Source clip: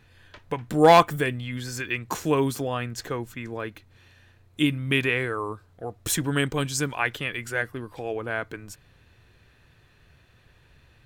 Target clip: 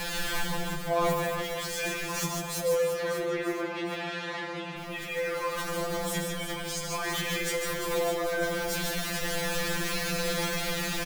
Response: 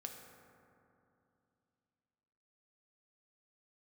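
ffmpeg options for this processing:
-filter_complex "[0:a]aeval=exprs='val(0)+0.5*0.0447*sgn(val(0))':channel_layout=same,bandreject=frequency=50:width_type=h:width=6,bandreject=frequency=100:width_type=h:width=6,bandreject=frequency=150:width_type=h:width=6,bandreject=frequency=200:width_type=h:width=6,bandreject=frequency=250:width_type=h:width=6,bandreject=frequency=300:width_type=h:width=6,bandreject=frequency=350:width_type=h:width=6,alimiter=level_in=4.5dB:limit=-24dB:level=0:latency=1:release=11,volume=-4.5dB,asettb=1/sr,asplit=3[link_01][link_02][link_03];[link_01]atrim=end=2.624[link_04];[link_02]atrim=start=2.62:end=4.78,asetpts=PTS-STARTPTS,afade=type=in:duration=0.004:curve=qsin,afade=type=out:start_time=2.156:duration=0.004:curve=qsin,highpass=200,lowpass=2700[link_05];[link_03]atrim=start=4.776[link_06];[link_04][link_05]acrossfade=duration=0.004:curve1=hsin:curve2=qsin[link_07];[link_07][link_06]acrossfade=duration=0.004:curve1=qsin:curve2=hsin,aecho=1:1:150|345|598.5|928|1356:0.631|0.398|0.251|0.158|0.1[link_08];[1:a]atrim=start_sample=2205,afade=type=out:start_time=0.19:duration=0.01,atrim=end_sample=8820[link_09];[link_08][link_09]afir=irnorm=-1:irlink=0,afftfilt=real='re*2.83*eq(mod(b,8),0)':imag='im*2.83*eq(mod(b,8),0)':win_size=2048:overlap=0.75,volume=8.5dB"

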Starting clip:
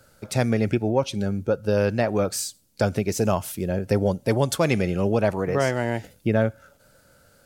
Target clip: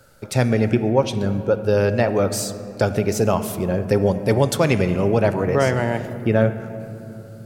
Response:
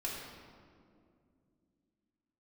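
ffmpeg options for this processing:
-filter_complex "[0:a]asplit=2[link_01][link_02];[1:a]atrim=start_sample=2205,asetrate=23814,aresample=44100,lowpass=5000[link_03];[link_02][link_03]afir=irnorm=-1:irlink=0,volume=-14dB[link_04];[link_01][link_04]amix=inputs=2:normalize=0,volume=2dB"

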